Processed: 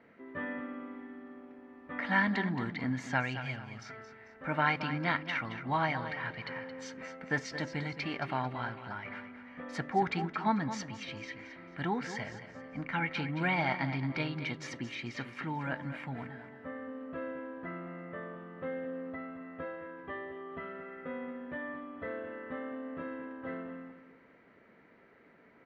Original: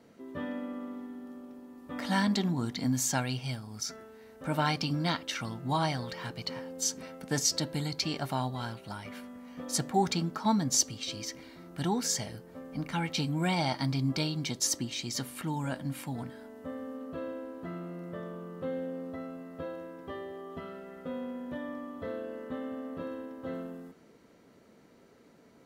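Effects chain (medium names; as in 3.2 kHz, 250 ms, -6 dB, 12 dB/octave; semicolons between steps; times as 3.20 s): resonant low-pass 2 kHz, resonance Q 2.8; bass shelf 390 Hz -4 dB; on a send: feedback delay 222 ms, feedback 32%, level -11 dB; on the sum: trim -1.5 dB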